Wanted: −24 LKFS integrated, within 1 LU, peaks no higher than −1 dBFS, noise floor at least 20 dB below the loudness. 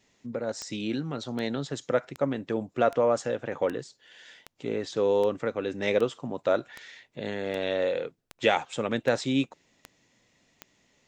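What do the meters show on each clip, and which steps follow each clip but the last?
number of clicks 14; integrated loudness −29.0 LKFS; sample peak −9.0 dBFS; target loudness −24.0 LKFS
→ click removal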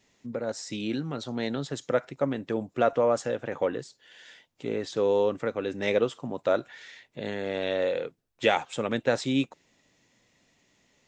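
number of clicks 0; integrated loudness −29.0 LKFS; sample peak −9.0 dBFS; target loudness −24.0 LKFS
→ level +5 dB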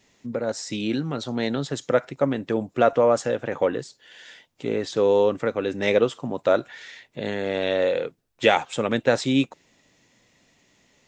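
integrated loudness −24.0 LKFS; sample peak −4.0 dBFS; background noise floor −64 dBFS

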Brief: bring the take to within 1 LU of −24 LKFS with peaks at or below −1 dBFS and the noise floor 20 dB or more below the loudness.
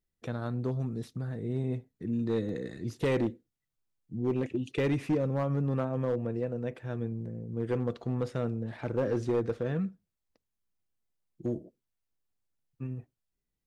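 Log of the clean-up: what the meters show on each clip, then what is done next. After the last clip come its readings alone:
share of clipped samples 0.9%; peaks flattened at −22.5 dBFS; number of dropouts 1; longest dropout 1.9 ms; integrated loudness −33.0 LKFS; sample peak −22.5 dBFS; target loudness −24.0 LKFS
→ clipped peaks rebuilt −22.5 dBFS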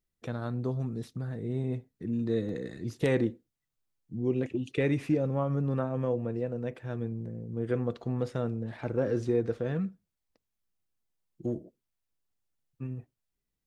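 share of clipped samples 0.0%; number of dropouts 1; longest dropout 1.9 ms
→ repair the gap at 0:02.49, 1.9 ms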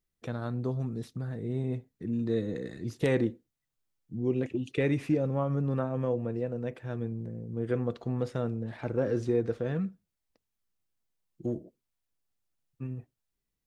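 number of dropouts 0; integrated loudness −32.5 LKFS; sample peak −13.5 dBFS; target loudness −24.0 LKFS
→ level +8.5 dB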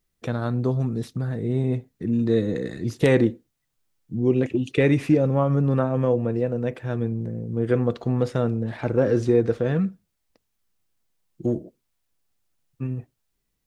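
integrated loudness −24.0 LKFS; sample peak −5.0 dBFS; background noise floor −76 dBFS

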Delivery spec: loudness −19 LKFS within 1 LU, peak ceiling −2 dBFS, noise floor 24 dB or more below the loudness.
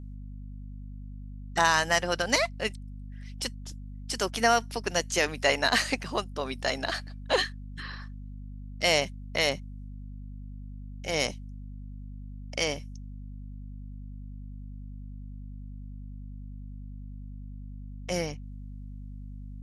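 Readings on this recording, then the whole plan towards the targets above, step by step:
mains hum 50 Hz; hum harmonics up to 250 Hz; level of the hum −38 dBFS; integrated loudness −28.0 LKFS; sample peak −8.5 dBFS; target loudness −19.0 LKFS
→ hum removal 50 Hz, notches 5
level +9 dB
brickwall limiter −2 dBFS

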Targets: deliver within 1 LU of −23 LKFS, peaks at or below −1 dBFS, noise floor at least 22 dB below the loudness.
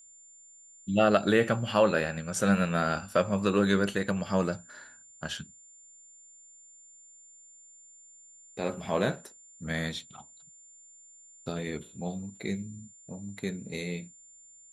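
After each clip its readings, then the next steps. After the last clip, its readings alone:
interfering tone 7,200 Hz; level of the tone −52 dBFS; integrated loudness −29.5 LKFS; sample peak −9.5 dBFS; target loudness −23.0 LKFS
→ notch filter 7,200 Hz, Q 30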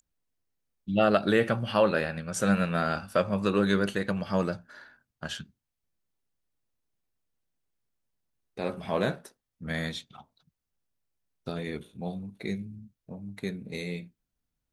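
interfering tone none found; integrated loudness −29.0 LKFS; sample peak −9.5 dBFS; target loudness −23.0 LKFS
→ level +6 dB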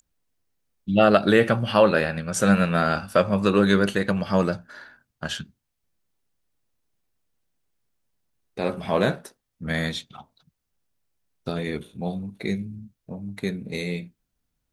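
integrated loudness −23.0 LKFS; sample peak −3.5 dBFS; background noise floor −79 dBFS

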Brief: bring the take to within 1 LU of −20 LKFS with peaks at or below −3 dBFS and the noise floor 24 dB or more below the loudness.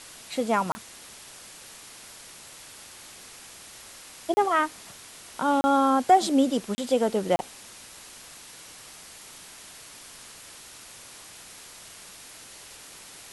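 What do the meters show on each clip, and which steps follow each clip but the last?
number of dropouts 5; longest dropout 30 ms; background noise floor −47 dBFS; target noise floor −49 dBFS; integrated loudness −24.5 LKFS; sample peak −8.5 dBFS; target loudness −20.0 LKFS
→ repair the gap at 0:00.72/0:04.34/0:05.61/0:06.75/0:07.36, 30 ms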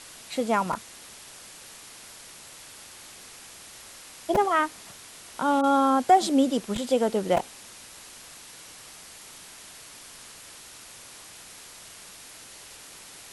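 number of dropouts 0; background noise floor −47 dBFS; target noise floor −49 dBFS
→ broadband denoise 6 dB, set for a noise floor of −47 dBFS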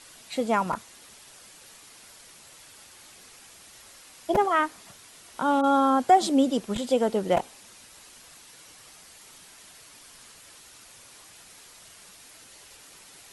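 background noise floor −51 dBFS; integrated loudness −24.5 LKFS; sample peak −8.5 dBFS; target loudness −20.0 LKFS
→ level +4.5 dB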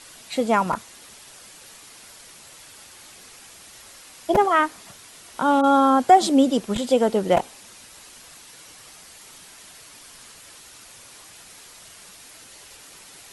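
integrated loudness −20.0 LKFS; sample peak −4.0 dBFS; background noise floor −46 dBFS

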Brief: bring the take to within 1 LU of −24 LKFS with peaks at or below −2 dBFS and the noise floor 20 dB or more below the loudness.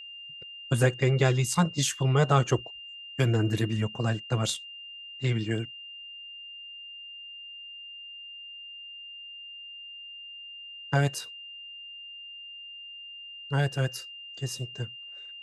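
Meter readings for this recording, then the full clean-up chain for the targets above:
interfering tone 2,800 Hz; level of the tone −41 dBFS; integrated loudness −28.0 LKFS; sample peak −8.0 dBFS; target loudness −24.0 LKFS
→ notch filter 2,800 Hz, Q 30
level +4 dB

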